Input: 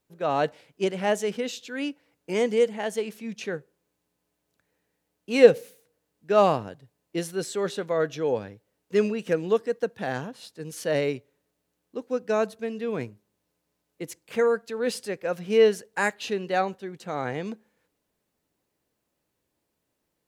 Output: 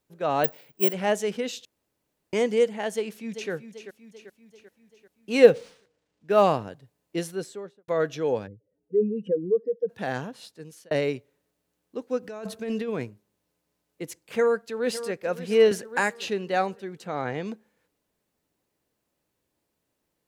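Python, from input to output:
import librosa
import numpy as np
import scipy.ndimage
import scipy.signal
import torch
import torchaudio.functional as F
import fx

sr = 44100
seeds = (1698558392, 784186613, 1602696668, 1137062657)

y = fx.resample_bad(x, sr, factor=2, down='filtered', up='zero_stuff', at=(0.44, 0.93))
y = fx.echo_throw(y, sr, start_s=2.94, length_s=0.57, ms=390, feedback_pct=55, wet_db=-10.5)
y = fx.resample_linear(y, sr, factor=3, at=(5.44, 6.42))
y = fx.studio_fade_out(y, sr, start_s=7.17, length_s=0.71)
y = fx.spec_expand(y, sr, power=2.5, at=(8.46, 9.88), fade=0.02)
y = fx.over_compress(y, sr, threshold_db=-33.0, ratio=-1.0, at=(12.22, 12.87), fade=0.02)
y = fx.echo_throw(y, sr, start_s=14.22, length_s=0.95, ms=560, feedback_pct=45, wet_db=-13.5)
y = fx.band_squash(y, sr, depth_pct=70, at=(15.71, 16.29))
y = fx.lowpass(y, sr, hz=fx.line((17.07, 4300.0), (17.47, 7800.0)), slope=12, at=(17.07, 17.47), fade=0.02)
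y = fx.edit(y, sr, fx.room_tone_fill(start_s=1.65, length_s=0.68),
    fx.fade_out_span(start_s=10.39, length_s=0.52), tone=tone)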